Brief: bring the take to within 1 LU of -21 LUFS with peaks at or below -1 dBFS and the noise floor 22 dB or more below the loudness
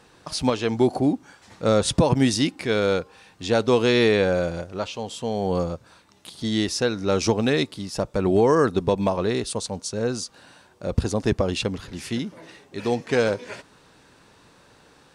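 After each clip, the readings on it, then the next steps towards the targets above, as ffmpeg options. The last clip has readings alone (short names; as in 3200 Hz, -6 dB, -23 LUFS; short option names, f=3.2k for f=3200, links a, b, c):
loudness -23.5 LUFS; peak -8.5 dBFS; loudness target -21.0 LUFS
-> -af "volume=2.5dB"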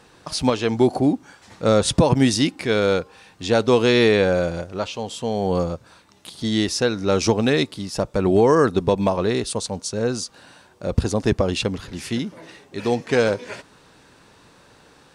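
loudness -21.0 LUFS; peak -6.0 dBFS; noise floor -53 dBFS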